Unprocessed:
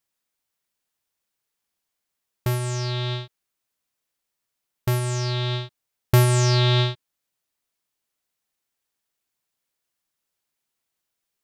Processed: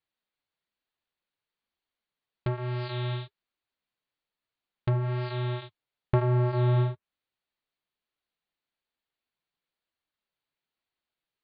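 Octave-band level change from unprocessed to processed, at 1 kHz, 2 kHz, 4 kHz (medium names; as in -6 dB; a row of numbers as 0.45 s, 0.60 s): -5.5 dB, -10.5 dB, -17.0 dB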